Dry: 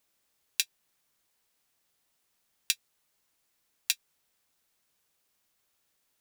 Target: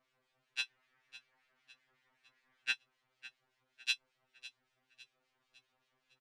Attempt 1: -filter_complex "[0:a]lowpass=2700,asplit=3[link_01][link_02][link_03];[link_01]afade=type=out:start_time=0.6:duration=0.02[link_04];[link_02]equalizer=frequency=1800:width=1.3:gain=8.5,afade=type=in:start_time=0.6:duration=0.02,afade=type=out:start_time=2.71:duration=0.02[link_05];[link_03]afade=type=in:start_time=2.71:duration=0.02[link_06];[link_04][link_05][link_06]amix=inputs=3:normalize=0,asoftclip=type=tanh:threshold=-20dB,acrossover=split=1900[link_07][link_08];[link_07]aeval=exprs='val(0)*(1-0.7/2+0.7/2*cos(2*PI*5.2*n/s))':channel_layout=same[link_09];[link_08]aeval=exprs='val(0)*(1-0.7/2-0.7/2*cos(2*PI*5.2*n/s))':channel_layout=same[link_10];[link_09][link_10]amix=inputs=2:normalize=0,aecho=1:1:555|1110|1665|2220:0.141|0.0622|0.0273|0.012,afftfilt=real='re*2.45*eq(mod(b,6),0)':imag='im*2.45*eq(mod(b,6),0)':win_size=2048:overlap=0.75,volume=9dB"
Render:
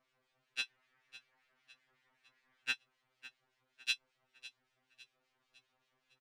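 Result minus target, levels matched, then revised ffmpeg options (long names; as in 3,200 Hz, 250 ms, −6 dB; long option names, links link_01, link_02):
soft clipping: distortion +8 dB
-filter_complex "[0:a]lowpass=2700,asplit=3[link_01][link_02][link_03];[link_01]afade=type=out:start_time=0.6:duration=0.02[link_04];[link_02]equalizer=frequency=1800:width=1.3:gain=8.5,afade=type=in:start_time=0.6:duration=0.02,afade=type=out:start_time=2.71:duration=0.02[link_05];[link_03]afade=type=in:start_time=2.71:duration=0.02[link_06];[link_04][link_05][link_06]amix=inputs=3:normalize=0,asoftclip=type=tanh:threshold=-14dB,acrossover=split=1900[link_07][link_08];[link_07]aeval=exprs='val(0)*(1-0.7/2+0.7/2*cos(2*PI*5.2*n/s))':channel_layout=same[link_09];[link_08]aeval=exprs='val(0)*(1-0.7/2-0.7/2*cos(2*PI*5.2*n/s))':channel_layout=same[link_10];[link_09][link_10]amix=inputs=2:normalize=0,aecho=1:1:555|1110|1665|2220:0.141|0.0622|0.0273|0.012,afftfilt=real='re*2.45*eq(mod(b,6),0)':imag='im*2.45*eq(mod(b,6),0)':win_size=2048:overlap=0.75,volume=9dB"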